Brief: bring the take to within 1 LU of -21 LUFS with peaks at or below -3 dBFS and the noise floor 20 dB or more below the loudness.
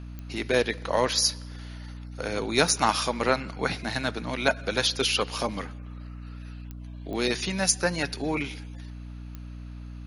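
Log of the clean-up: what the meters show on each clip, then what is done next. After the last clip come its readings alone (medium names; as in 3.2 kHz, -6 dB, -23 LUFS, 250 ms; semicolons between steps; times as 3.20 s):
clicks found 5; hum 60 Hz; highest harmonic 300 Hz; hum level -37 dBFS; loudness -26.5 LUFS; peak level -4.5 dBFS; loudness target -21.0 LUFS
-> de-click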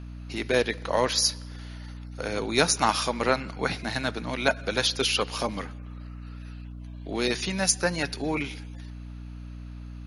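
clicks found 0; hum 60 Hz; highest harmonic 300 Hz; hum level -37 dBFS
-> de-hum 60 Hz, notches 5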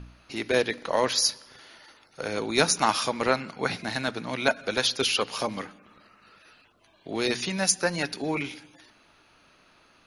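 hum not found; loudness -26.5 LUFS; peak level -4.0 dBFS; loudness target -21.0 LUFS
-> trim +5.5 dB; peak limiter -3 dBFS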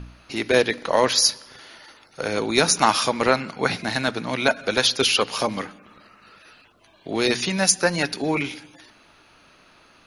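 loudness -21.5 LUFS; peak level -3.0 dBFS; noise floor -55 dBFS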